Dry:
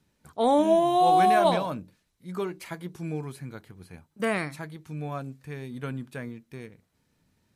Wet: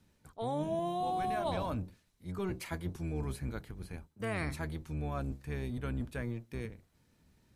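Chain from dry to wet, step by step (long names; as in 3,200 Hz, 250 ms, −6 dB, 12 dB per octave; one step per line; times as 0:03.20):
sub-octave generator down 1 octave, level 0 dB
reversed playback
downward compressor 5 to 1, threshold −33 dBFS, peak gain reduction 15.5 dB
reversed playback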